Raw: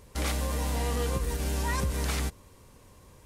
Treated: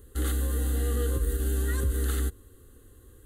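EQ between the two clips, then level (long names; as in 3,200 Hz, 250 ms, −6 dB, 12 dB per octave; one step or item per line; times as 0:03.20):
phaser with its sweep stopped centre 630 Hz, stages 6
phaser with its sweep stopped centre 2,300 Hz, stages 4
+5.5 dB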